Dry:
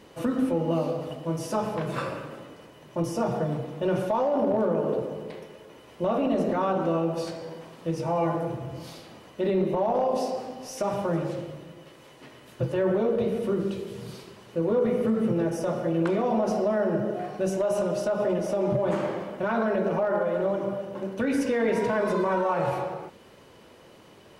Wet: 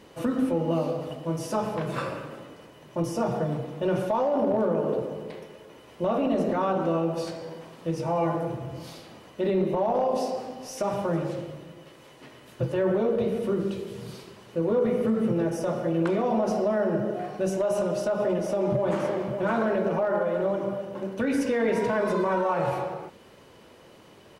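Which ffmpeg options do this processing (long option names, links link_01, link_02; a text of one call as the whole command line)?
ffmpeg -i in.wav -filter_complex "[0:a]asplit=2[link_01][link_02];[link_02]afade=type=in:start_time=18.43:duration=0.01,afade=type=out:start_time=19.31:duration=0.01,aecho=0:1:560|1120|1680:0.446684|0.0670025|0.0100504[link_03];[link_01][link_03]amix=inputs=2:normalize=0" out.wav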